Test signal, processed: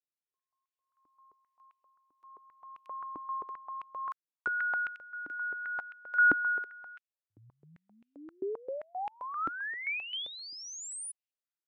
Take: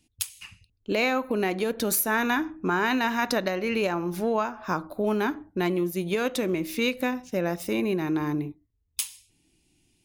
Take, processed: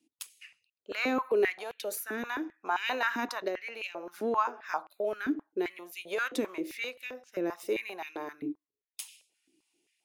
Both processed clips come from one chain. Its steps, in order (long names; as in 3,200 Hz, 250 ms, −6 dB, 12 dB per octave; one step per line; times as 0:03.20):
rotating-speaker cabinet horn 0.6 Hz
high-pass on a step sequencer 7.6 Hz 300–2,600 Hz
level −7 dB